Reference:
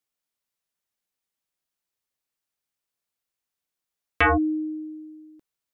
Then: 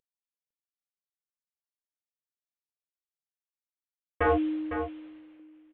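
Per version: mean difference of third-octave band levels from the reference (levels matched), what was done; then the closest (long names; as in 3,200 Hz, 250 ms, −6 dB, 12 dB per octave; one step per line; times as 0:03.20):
9.0 dB: variable-slope delta modulation 16 kbit/s
parametric band 500 Hz +11 dB 0.55 octaves
single-tap delay 505 ms −9 dB
level −6 dB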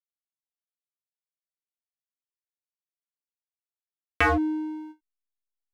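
4.0 dB: in parallel at −1 dB: downward compressor, threshold −31 dBFS, peak gain reduction 13.5 dB
on the sum: slack as between gear wheels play −25 dBFS
every ending faded ahead of time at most 380 dB per second
level −3.5 dB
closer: second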